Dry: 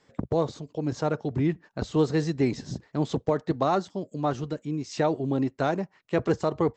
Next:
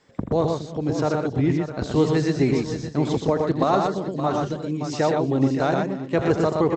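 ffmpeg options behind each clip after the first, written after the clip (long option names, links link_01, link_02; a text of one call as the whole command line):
ffmpeg -i in.wav -af "aecho=1:1:83|120|323|571|692:0.335|0.668|0.106|0.299|0.178,volume=3dB" out.wav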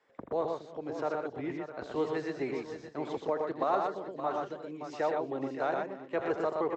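ffmpeg -i in.wav -filter_complex "[0:a]acrossover=split=360 2900:gain=0.126 1 0.224[link_01][link_02][link_03];[link_01][link_02][link_03]amix=inputs=3:normalize=0,volume=-7.5dB" out.wav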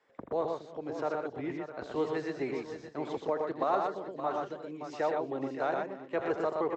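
ffmpeg -i in.wav -af anull out.wav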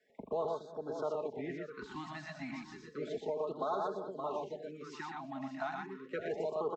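ffmpeg -i in.wav -filter_complex "[0:a]aecho=1:1:4.7:0.54,acrossover=split=140|3000[link_01][link_02][link_03];[link_02]alimiter=limit=-23.5dB:level=0:latency=1:release=95[link_04];[link_01][link_04][link_03]amix=inputs=3:normalize=0,afftfilt=real='re*(1-between(b*sr/1024,420*pow(2400/420,0.5+0.5*sin(2*PI*0.32*pts/sr))/1.41,420*pow(2400/420,0.5+0.5*sin(2*PI*0.32*pts/sr))*1.41))':imag='im*(1-between(b*sr/1024,420*pow(2400/420,0.5+0.5*sin(2*PI*0.32*pts/sr))/1.41,420*pow(2400/420,0.5+0.5*sin(2*PI*0.32*pts/sr))*1.41))':win_size=1024:overlap=0.75,volume=-3dB" out.wav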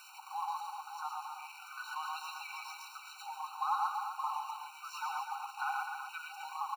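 ffmpeg -i in.wav -af "aeval=exprs='val(0)+0.5*0.00531*sgn(val(0))':channel_layout=same,aecho=1:1:137|253.6:0.282|0.398,afftfilt=real='re*eq(mod(floor(b*sr/1024/760),2),1)':imag='im*eq(mod(floor(b*sr/1024/760),2),1)':win_size=1024:overlap=0.75,volume=4.5dB" out.wav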